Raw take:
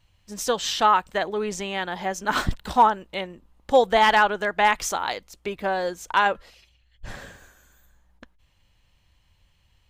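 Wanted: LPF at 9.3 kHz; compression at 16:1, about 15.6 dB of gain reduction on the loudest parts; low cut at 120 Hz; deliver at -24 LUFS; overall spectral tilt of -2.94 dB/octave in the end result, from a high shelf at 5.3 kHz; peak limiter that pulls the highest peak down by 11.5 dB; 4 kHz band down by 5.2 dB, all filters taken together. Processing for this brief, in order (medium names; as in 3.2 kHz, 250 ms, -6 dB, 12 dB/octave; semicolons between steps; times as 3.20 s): high-pass 120 Hz; low-pass 9.3 kHz; peaking EQ 4 kHz -8.5 dB; treble shelf 5.3 kHz +3 dB; compression 16:1, threshold -27 dBFS; trim +12.5 dB; peak limiter -13.5 dBFS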